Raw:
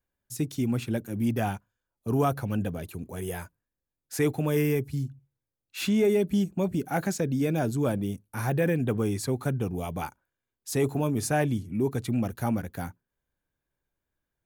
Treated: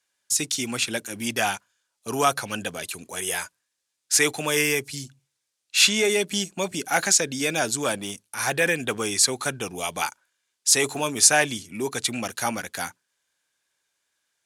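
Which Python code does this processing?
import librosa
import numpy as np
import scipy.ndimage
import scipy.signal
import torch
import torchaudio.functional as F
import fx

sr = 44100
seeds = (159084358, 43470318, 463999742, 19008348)

y = fx.transient(x, sr, attack_db=-8, sustain_db=0, at=(7.78, 8.47))
y = fx.weighting(y, sr, curve='ITU-R 468')
y = y * 10.0 ** (7.5 / 20.0)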